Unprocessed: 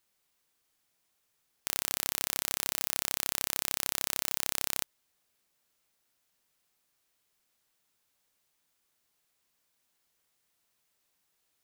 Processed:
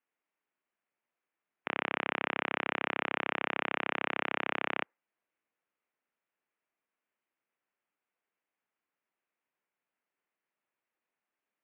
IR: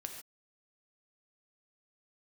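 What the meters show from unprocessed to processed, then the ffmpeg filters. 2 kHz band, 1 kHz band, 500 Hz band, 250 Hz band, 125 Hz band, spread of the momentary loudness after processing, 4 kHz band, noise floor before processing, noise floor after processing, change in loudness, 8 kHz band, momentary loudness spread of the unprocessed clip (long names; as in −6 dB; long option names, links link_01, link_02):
+8.0 dB, +9.0 dB, +9.0 dB, +8.0 dB, 0.0 dB, 3 LU, −5.5 dB, −77 dBFS, below −85 dBFS, −2.5 dB, below −40 dB, 3 LU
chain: -af "highpass=frequency=290:width_type=q:width=0.5412,highpass=frequency=290:width_type=q:width=1.307,lowpass=frequency=2700:width_type=q:width=0.5176,lowpass=frequency=2700:width_type=q:width=0.7071,lowpass=frequency=2700:width_type=q:width=1.932,afreqshift=-86,afftdn=noise_reduction=15:noise_floor=-59,volume=9dB"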